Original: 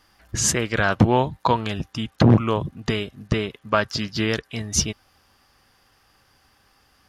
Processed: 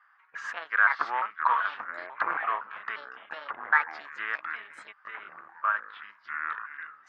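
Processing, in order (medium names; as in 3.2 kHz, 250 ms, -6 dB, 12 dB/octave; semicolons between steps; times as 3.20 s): pitch shift switched off and on +6 st, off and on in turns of 174 ms; ever faster or slower copies 371 ms, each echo -6 st, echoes 3, each echo -6 dB; Butterworth band-pass 1.4 kHz, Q 2; trim +4 dB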